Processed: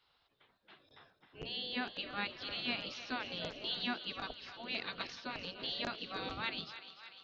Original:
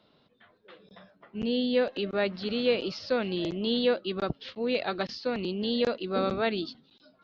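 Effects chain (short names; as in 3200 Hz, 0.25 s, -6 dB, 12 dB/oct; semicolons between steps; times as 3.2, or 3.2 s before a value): notches 60/120/180/240 Hz; spectral gate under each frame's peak -10 dB weak; thinning echo 0.297 s, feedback 70%, high-pass 590 Hz, level -12 dB; gain -3.5 dB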